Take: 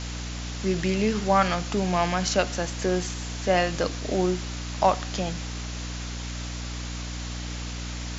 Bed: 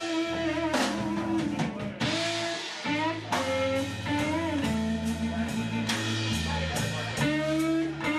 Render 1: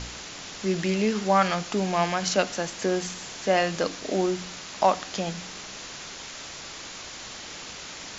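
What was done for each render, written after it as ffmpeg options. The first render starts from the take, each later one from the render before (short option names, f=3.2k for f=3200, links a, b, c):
-af "bandreject=f=60:t=h:w=4,bandreject=f=120:t=h:w=4,bandreject=f=180:t=h:w=4,bandreject=f=240:t=h:w=4,bandreject=f=300:t=h:w=4"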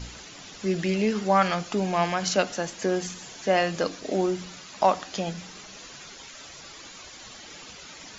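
-af "afftdn=nr=10:nf=-40"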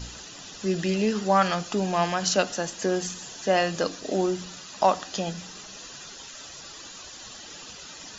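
-af "highshelf=f=5.2k:g=5.5,bandreject=f=2.2k:w=6.8"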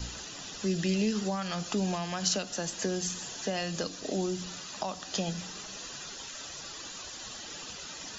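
-filter_complex "[0:a]alimiter=limit=-14dB:level=0:latency=1:release=280,acrossover=split=220|3000[a][b][c];[b]acompressor=threshold=-33dB:ratio=6[d];[a][d][c]amix=inputs=3:normalize=0"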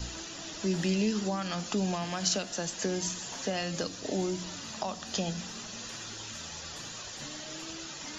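-filter_complex "[1:a]volume=-20.5dB[a];[0:a][a]amix=inputs=2:normalize=0"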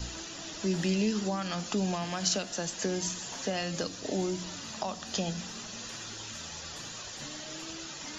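-af anull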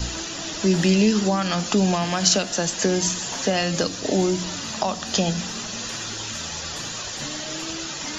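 -af "volume=10.5dB"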